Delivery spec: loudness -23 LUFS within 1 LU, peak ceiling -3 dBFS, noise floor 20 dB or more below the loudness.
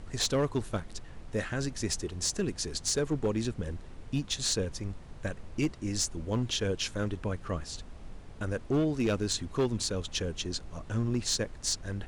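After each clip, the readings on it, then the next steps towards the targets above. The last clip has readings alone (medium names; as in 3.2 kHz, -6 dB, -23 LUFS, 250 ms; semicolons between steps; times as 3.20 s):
clipped samples 0.8%; clipping level -22.0 dBFS; noise floor -47 dBFS; noise floor target -52 dBFS; loudness -32.0 LUFS; peak level -22.0 dBFS; loudness target -23.0 LUFS
-> clip repair -22 dBFS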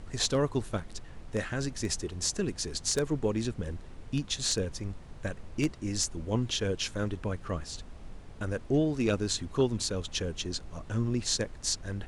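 clipped samples 0.0%; noise floor -47 dBFS; noise floor target -52 dBFS
-> noise print and reduce 6 dB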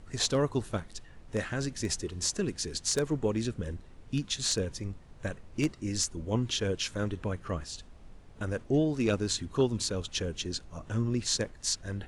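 noise floor -52 dBFS; loudness -32.0 LUFS; peak level -13.0 dBFS; loudness target -23.0 LUFS
-> trim +9 dB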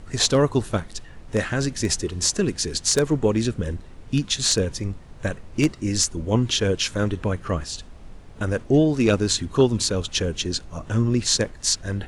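loudness -23.0 LUFS; peak level -4.0 dBFS; noise floor -43 dBFS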